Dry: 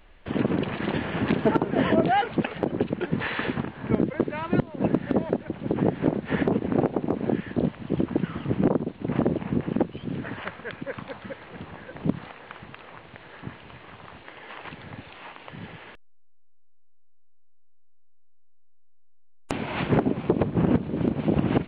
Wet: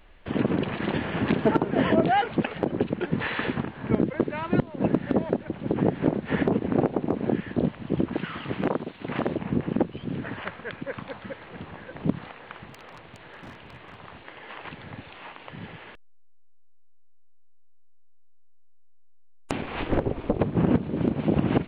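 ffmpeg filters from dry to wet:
-filter_complex "[0:a]asettb=1/sr,asplit=3[a][b][c];[a]atrim=end=8.134[d];[b]atrim=start=8.13:end=9.35,asetpts=PTS-STARTPTS,afade=t=in:d=0.004:c=qsin,afade=t=out:st=1.216:d=0.004:c=qsin,tiltshelf=f=700:g=-7.5[e];[c]atrim=start=9.346[f];[d][e]acrossfade=d=0.004:c1=hsin:c2=qsin[g];[g][f]acrossfade=d=0.004:c1=qsin:c2=hsin,asettb=1/sr,asplit=3[h][i][j];[h]atrim=end=12.694[k];[i]atrim=start=12.69:end=13.99,asetpts=PTS-STARTPTS,afade=t=in:d=0.004:c=qsin,afade=t=out:st=1.296:d=0.004:c=qsin,aeval=exprs='0.0158*(abs(mod(val(0)/0.0158+3,4)-2)-1)':c=same[l];[j]atrim=start=13.986[m];[k][l]acrossfade=d=0.004:c1=hsin:c2=qsin[n];[n][m]acrossfade=d=0.004:c1=qsin:c2=hsin,asplit=3[o][p][q];[o]afade=t=out:st=19.61:d=0.02[r];[p]aeval=exprs='val(0)*sin(2*PI*140*n/s)':c=same,afade=t=in:st=19.61:d=0.02,afade=t=out:st=20.38:d=0.02[s];[q]afade=t=in:st=20.38:d=0.02[t];[r][s][t]amix=inputs=3:normalize=0"

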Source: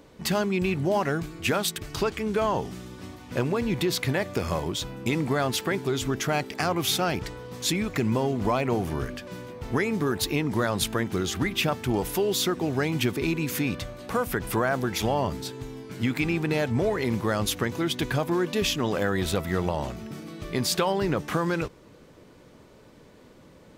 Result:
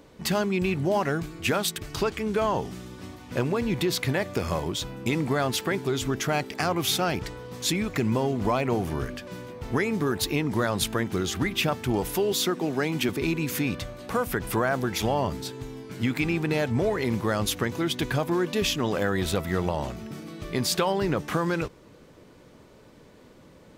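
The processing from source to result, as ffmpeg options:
-filter_complex "[0:a]asettb=1/sr,asplit=3[a][b][c];[a]atrim=end=12.324[d];[b]atrim=start=12.32:end=13.09,asetpts=PTS-STARTPTS,afade=t=in:d=0.004:c=qsin,afade=t=out:st=0.766:d=0.004:c=qsin,highpass=f=150:w=0.5412,highpass=f=150:w=1.3066[e];[c]atrim=start=13.086[f];[d][e]acrossfade=d=0.004:c1=hsin:c2=qsin[g];[g][f]acrossfade=d=0.004:c1=qsin:c2=hsin"

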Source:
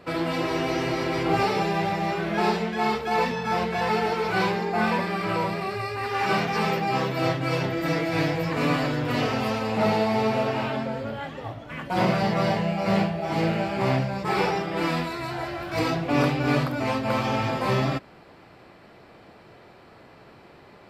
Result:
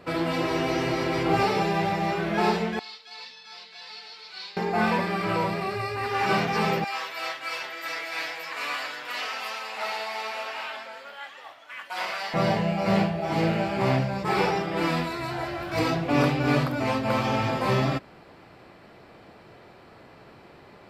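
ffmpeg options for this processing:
-filter_complex "[0:a]asettb=1/sr,asplit=3[a][b][c];[a]atrim=end=2.794[d];[b]atrim=start=2.79:end=4.57,asetpts=PTS-STARTPTS,afade=t=in:d=0.004:c=qsin,afade=t=out:st=1.776:d=0.004:c=qsin,bandpass=f=4.3k:t=q:w=3.6[e];[c]atrim=start=4.566[f];[d][e]acrossfade=d=0.004:c1=hsin:c2=qsin[g];[g][f]acrossfade=d=0.004:c1=qsin:c2=hsin,asettb=1/sr,asplit=3[h][i][j];[h]atrim=end=6.844[k];[i]atrim=start=6.84:end=12.34,asetpts=PTS-STARTPTS,afade=t=in:d=0.004:c=qsin,afade=t=out:st=5.496:d=0.004:c=qsin,highpass=1.2k[l];[j]atrim=start=12.336[m];[k][l]acrossfade=d=0.004:c1=hsin:c2=qsin[n];[n][m]acrossfade=d=0.004:c1=qsin:c2=hsin"

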